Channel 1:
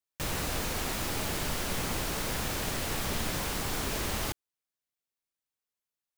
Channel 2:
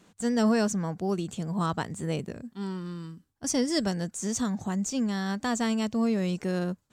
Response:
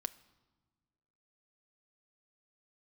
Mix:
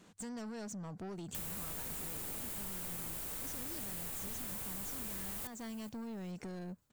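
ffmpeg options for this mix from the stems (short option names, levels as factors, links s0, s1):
-filter_complex "[0:a]aexciter=amount=4:drive=4:freq=7400,adelay=1150,volume=0.447,asplit=2[s0][s1];[s1]volume=0.0708[s2];[1:a]acompressor=threshold=0.0282:ratio=6,asoftclip=type=tanh:threshold=0.0158,volume=0.794[s3];[s2]aecho=0:1:421|842|1263|1684:1|0.27|0.0729|0.0197[s4];[s0][s3][s4]amix=inputs=3:normalize=0,acompressor=threshold=0.00794:ratio=3"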